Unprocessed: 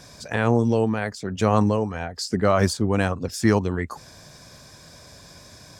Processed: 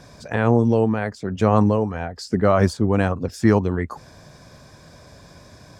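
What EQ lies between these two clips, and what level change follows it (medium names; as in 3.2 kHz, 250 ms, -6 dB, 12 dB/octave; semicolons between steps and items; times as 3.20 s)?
treble shelf 2.6 kHz -10.5 dB; +3.0 dB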